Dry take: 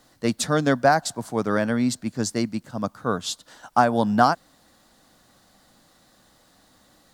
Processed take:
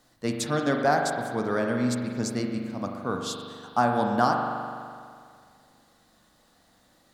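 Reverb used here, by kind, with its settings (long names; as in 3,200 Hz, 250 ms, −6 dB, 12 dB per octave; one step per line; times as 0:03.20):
spring reverb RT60 2.1 s, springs 41 ms, chirp 25 ms, DRR 2 dB
level −5.5 dB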